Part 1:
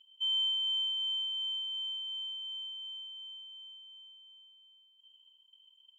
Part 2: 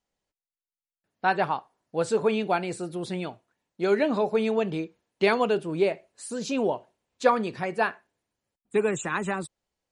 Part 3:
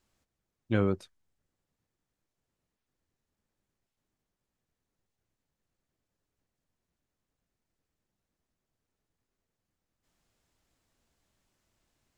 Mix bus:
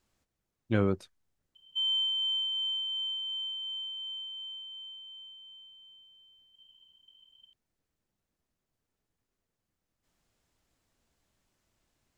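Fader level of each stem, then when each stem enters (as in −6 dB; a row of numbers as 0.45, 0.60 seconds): +1.5 dB, muted, 0.0 dB; 1.55 s, muted, 0.00 s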